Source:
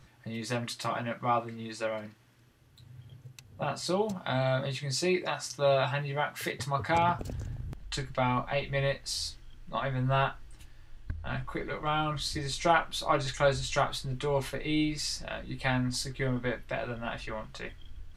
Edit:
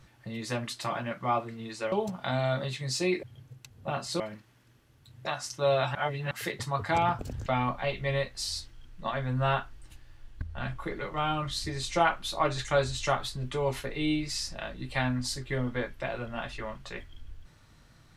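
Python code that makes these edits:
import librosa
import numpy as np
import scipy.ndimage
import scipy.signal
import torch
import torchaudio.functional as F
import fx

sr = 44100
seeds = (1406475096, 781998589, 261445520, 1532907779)

y = fx.edit(x, sr, fx.swap(start_s=1.92, length_s=1.05, other_s=3.94, other_length_s=1.31),
    fx.reverse_span(start_s=5.95, length_s=0.36),
    fx.cut(start_s=7.46, length_s=0.69), tone=tone)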